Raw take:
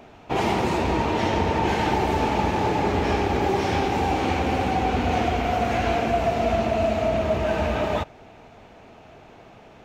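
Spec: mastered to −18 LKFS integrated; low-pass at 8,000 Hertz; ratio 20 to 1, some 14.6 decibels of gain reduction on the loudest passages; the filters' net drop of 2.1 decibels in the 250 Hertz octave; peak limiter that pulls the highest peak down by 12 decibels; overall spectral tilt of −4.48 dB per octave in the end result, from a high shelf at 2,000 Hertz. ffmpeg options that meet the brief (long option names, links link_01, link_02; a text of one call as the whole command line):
ffmpeg -i in.wav -af "lowpass=8000,equalizer=frequency=250:width_type=o:gain=-3,highshelf=frequency=2000:gain=9,acompressor=threshold=-32dB:ratio=20,volume=24.5dB,alimiter=limit=-9.5dB:level=0:latency=1" out.wav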